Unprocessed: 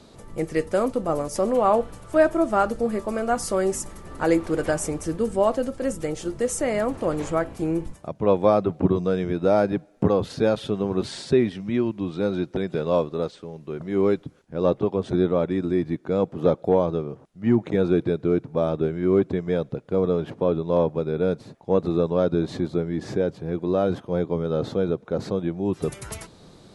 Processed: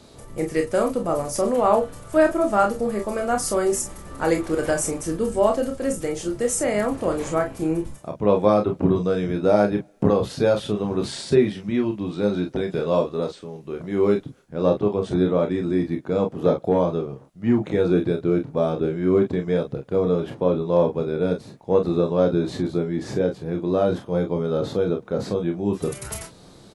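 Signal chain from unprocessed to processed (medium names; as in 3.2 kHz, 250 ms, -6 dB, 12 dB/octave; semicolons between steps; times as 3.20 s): treble shelf 8.4 kHz +7.5 dB; on a send: early reflections 29 ms -6 dB, 44 ms -9 dB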